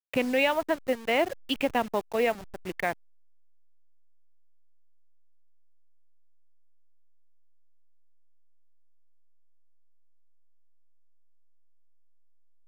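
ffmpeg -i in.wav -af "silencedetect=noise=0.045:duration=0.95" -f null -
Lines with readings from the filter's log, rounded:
silence_start: 2.92
silence_end: 12.67 | silence_duration: 9.75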